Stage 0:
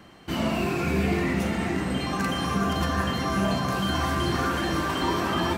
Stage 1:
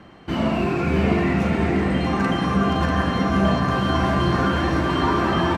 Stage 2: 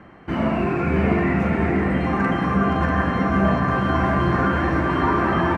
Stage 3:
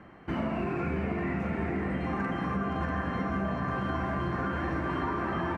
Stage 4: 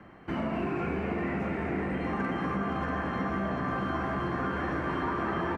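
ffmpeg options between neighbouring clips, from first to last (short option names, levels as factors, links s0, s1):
-af "aemphasis=mode=reproduction:type=75fm,aecho=1:1:642:0.562,volume=1.58"
-af "highshelf=f=2700:t=q:w=1.5:g=-8.5"
-af "acompressor=threshold=0.0794:ratio=6,volume=0.531"
-filter_complex "[0:a]acrossover=split=170|1300[s0][s1][s2];[s0]asoftclip=type=tanh:threshold=0.0141[s3];[s3][s1][s2]amix=inputs=3:normalize=0,asplit=8[s4][s5][s6][s7][s8][s9][s10][s11];[s5]adelay=246,afreqshift=69,volume=0.335[s12];[s6]adelay=492,afreqshift=138,volume=0.197[s13];[s7]adelay=738,afreqshift=207,volume=0.116[s14];[s8]adelay=984,afreqshift=276,volume=0.0692[s15];[s9]adelay=1230,afreqshift=345,volume=0.0407[s16];[s10]adelay=1476,afreqshift=414,volume=0.024[s17];[s11]adelay=1722,afreqshift=483,volume=0.0141[s18];[s4][s12][s13][s14][s15][s16][s17][s18]amix=inputs=8:normalize=0"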